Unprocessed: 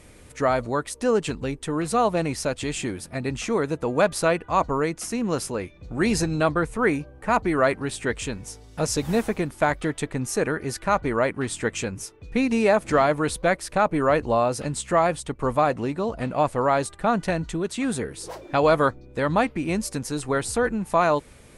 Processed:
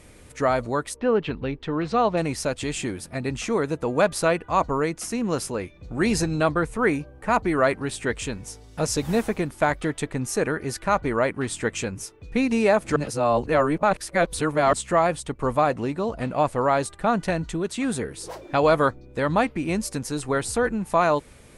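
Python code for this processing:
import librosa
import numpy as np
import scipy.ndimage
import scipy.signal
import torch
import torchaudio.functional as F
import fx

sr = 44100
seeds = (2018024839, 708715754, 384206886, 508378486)

y = fx.lowpass(x, sr, hz=fx.line((0.95, 3000.0), (2.16, 5500.0)), slope=24, at=(0.95, 2.16), fade=0.02)
y = fx.edit(y, sr, fx.reverse_span(start_s=12.96, length_s=1.77), tone=tone)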